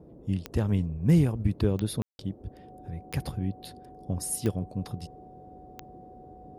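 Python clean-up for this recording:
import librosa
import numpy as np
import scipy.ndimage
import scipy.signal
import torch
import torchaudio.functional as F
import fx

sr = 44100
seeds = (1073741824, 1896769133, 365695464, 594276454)

y = fx.fix_declick_ar(x, sr, threshold=10.0)
y = fx.notch(y, sr, hz=740.0, q=30.0)
y = fx.fix_ambience(y, sr, seeds[0], print_start_s=5.24, print_end_s=5.74, start_s=2.02, end_s=2.19)
y = fx.noise_reduce(y, sr, print_start_s=5.24, print_end_s=5.74, reduce_db=24.0)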